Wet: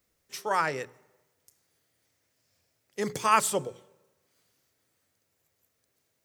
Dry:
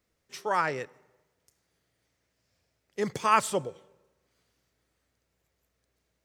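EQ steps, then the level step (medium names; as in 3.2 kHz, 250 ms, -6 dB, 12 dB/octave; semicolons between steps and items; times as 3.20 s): treble shelf 7.5 kHz +11 dB; hum notches 60/120/180/240/300/360/420 Hz; 0.0 dB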